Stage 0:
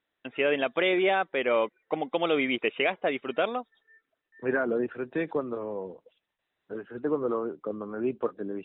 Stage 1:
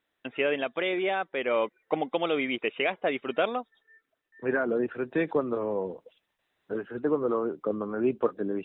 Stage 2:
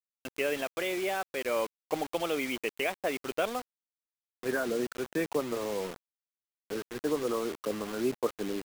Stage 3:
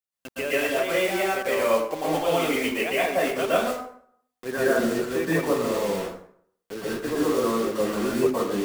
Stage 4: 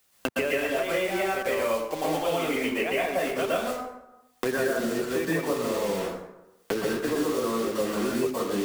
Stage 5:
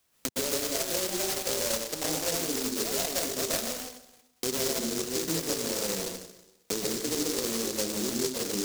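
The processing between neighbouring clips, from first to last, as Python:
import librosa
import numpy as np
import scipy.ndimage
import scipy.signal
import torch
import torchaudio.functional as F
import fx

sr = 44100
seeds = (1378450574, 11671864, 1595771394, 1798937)

y1 = fx.rider(x, sr, range_db=5, speed_s=0.5)
y2 = fx.quant_dither(y1, sr, seeds[0], bits=6, dither='none')
y2 = y2 * librosa.db_to_amplitude(-4.0)
y3 = fx.rev_plate(y2, sr, seeds[1], rt60_s=0.62, hf_ratio=0.65, predelay_ms=105, drr_db=-8.0)
y4 = fx.band_squash(y3, sr, depth_pct=100)
y4 = y4 * librosa.db_to_amplitude(-3.5)
y5 = fx.noise_mod_delay(y4, sr, seeds[2], noise_hz=5700.0, depth_ms=0.28)
y5 = y5 * librosa.db_to_amplitude(-3.5)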